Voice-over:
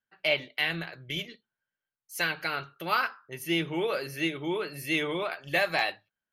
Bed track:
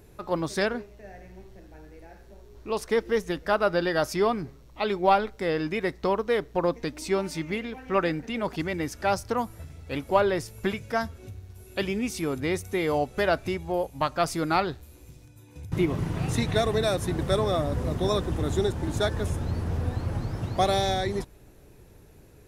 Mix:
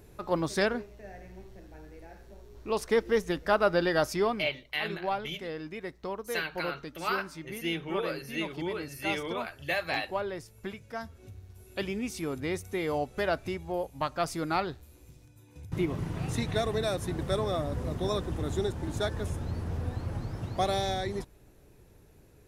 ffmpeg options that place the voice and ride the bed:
-filter_complex "[0:a]adelay=4150,volume=-4.5dB[a];[1:a]volume=5dB,afade=t=out:st=3.98:d=0.66:silence=0.316228,afade=t=in:st=10.98:d=0.43:silence=0.501187[b];[a][b]amix=inputs=2:normalize=0"

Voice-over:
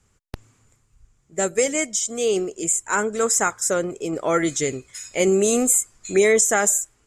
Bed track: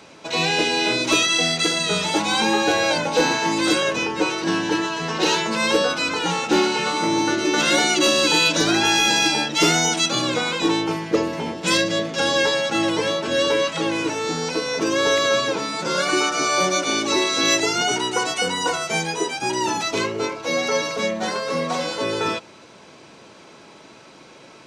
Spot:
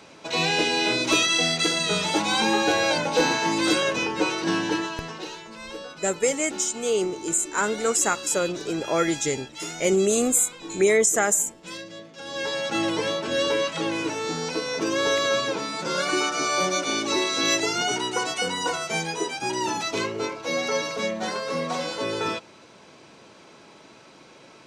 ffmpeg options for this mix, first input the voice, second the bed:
-filter_complex "[0:a]adelay=4650,volume=-2.5dB[a];[1:a]volume=12dB,afade=t=out:st=4.63:d=0.66:silence=0.158489,afade=t=in:st=12.24:d=0.5:silence=0.188365[b];[a][b]amix=inputs=2:normalize=0"

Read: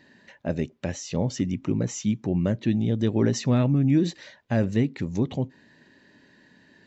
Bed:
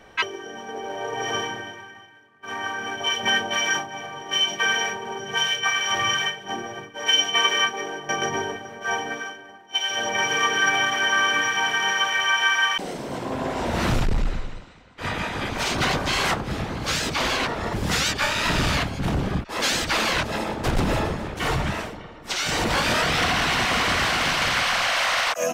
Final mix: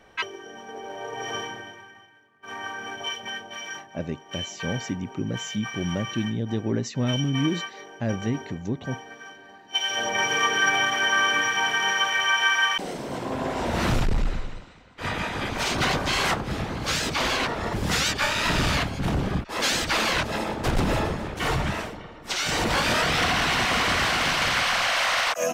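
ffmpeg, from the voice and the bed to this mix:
-filter_complex "[0:a]adelay=3500,volume=-4dB[a];[1:a]volume=7dB,afade=t=out:st=3:d=0.28:silence=0.398107,afade=t=in:st=9.18:d=0.47:silence=0.251189[b];[a][b]amix=inputs=2:normalize=0"

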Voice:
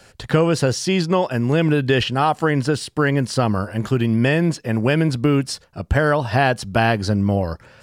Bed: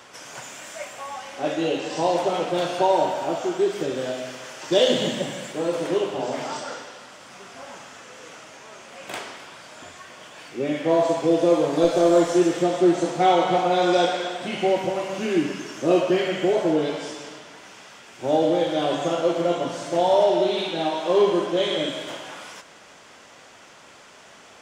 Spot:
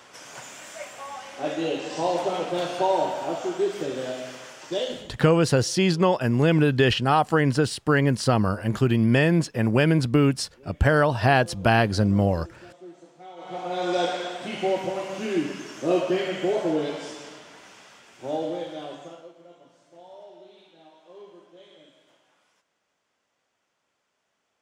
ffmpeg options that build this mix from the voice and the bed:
-filter_complex "[0:a]adelay=4900,volume=-2dB[a];[1:a]volume=20dB,afade=t=out:st=4.36:d=0.77:silence=0.0668344,afade=t=in:st=13.36:d=0.74:silence=0.0707946,afade=t=out:st=17.59:d=1.73:silence=0.0595662[b];[a][b]amix=inputs=2:normalize=0"

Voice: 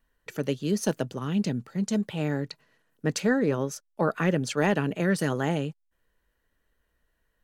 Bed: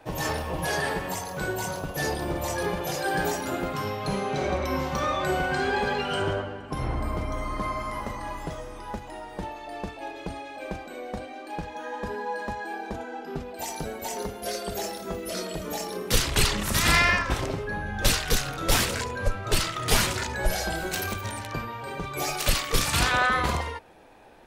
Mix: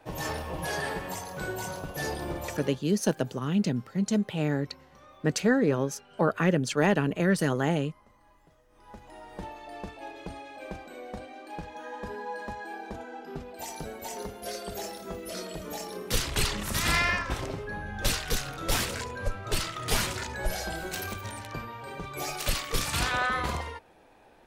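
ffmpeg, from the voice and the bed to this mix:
-filter_complex "[0:a]adelay=2200,volume=0.5dB[a];[1:a]volume=17.5dB,afade=t=out:st=2.32:d=0.5:silence=0.0749894,afade=t=in:st=8.68:d=0.71:silence=0.0794328[b];[a][b]amix=inputs=2:normalize=0"

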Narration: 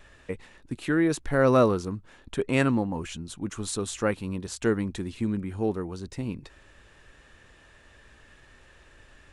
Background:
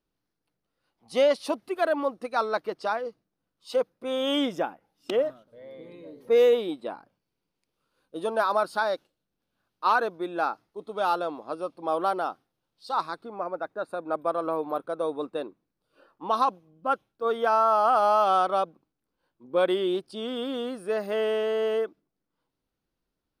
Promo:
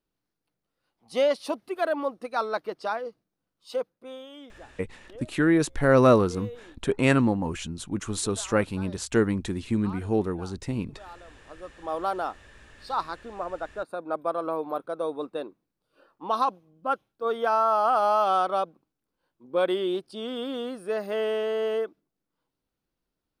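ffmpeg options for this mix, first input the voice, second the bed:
-filter_complex "[0:a]adelay=4500,volume=2.5dB[a];[1:a]volume=18dB,afade=t=out:st=3.57:d=0.72:silence=0.112202,afade=t=in:st=11.39:d=0.8:silence=0.105925[b];[a][b]amix=inputs=2:normalize=0"

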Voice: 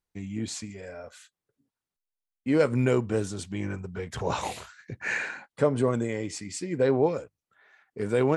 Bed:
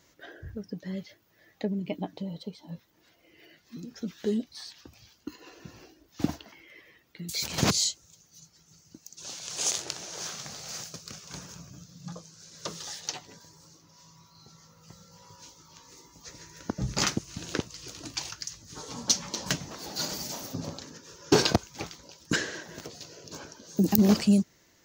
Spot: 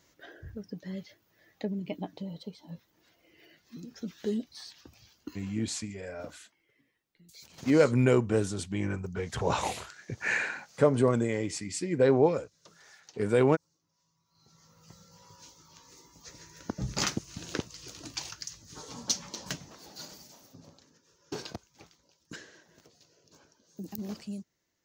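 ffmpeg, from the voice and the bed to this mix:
-filter_complex "[0:a]adelay=5200,volume=0.5dB[a];[1:a]volume=14.5dB,afade=t=out:st=5.32:d=0.48:silence=0.133352,afade=t=in:st=14.25:d=0.53:silence=0.133352,afade=t=out:st=18.68:d=1.63:silence=0.188365[b];[a][b]amix=inputs=2:normalize=0"

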